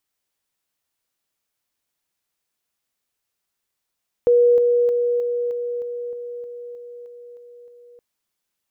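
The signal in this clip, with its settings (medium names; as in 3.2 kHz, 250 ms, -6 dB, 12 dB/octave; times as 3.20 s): level ladder 482 Hz -11 dBFS, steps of -3 dB, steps 12, 0.31 s 0.00 s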